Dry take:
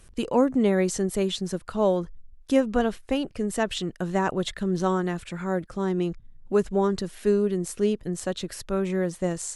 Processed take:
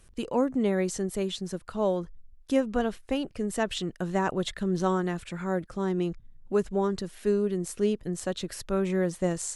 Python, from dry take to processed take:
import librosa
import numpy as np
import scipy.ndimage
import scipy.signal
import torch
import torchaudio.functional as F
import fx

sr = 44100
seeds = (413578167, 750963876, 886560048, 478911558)

y = fx.rider(x, sr, range_db=10, speed_s=2.0)
y = y * 10.0 ** (-3.5 / 20.0)